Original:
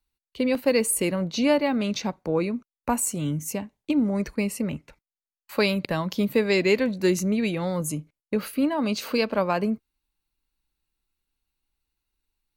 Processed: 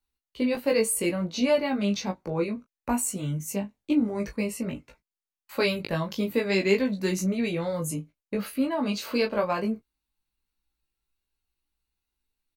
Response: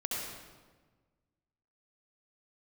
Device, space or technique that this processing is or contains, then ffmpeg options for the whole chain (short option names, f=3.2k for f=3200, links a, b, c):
double-tracked vocal: -filter_complex "[0:a]asplit=2[a][b];[b]adelay=20,volume=-8dB[c];[a][c]amix=inputs=2:normalize=0,flanger=delay=15:depth=3.2:speed=0.58"